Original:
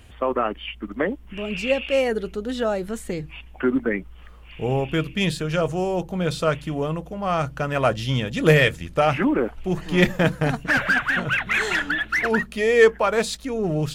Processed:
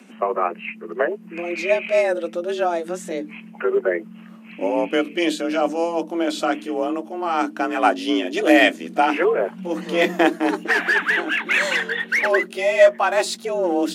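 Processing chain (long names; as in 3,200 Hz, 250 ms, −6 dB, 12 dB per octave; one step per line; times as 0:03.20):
pitch glide at a constant tempo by −3.5 semitones ending unshifted
frequency shifter +170 Hz
level +3 dB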